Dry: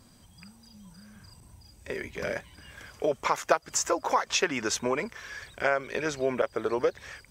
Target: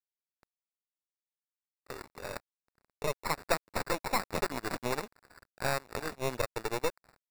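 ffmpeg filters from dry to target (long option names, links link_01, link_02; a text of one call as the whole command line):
ffmpeg -i in.wav -af "equalizer=frequency=150:width_type=o:width=0.46:gain=-12.5,acrusher=samples=14:mix=1:aa=0.000001,aeval=exprs='sgn(val(0))*max(abs(val(0))-0.0106,0)':channel_layout=same,aeval=exprs='0.335*(cos(1*acos(clip(val(0)/0.335,-1,1)))-cos(1*PI/2))+0.0531*(cos(8*acos(clip(val(0)/0.335,-1,1)))-cos(8*PI/2))':channel_layout=same,volume=-6dB" out.wav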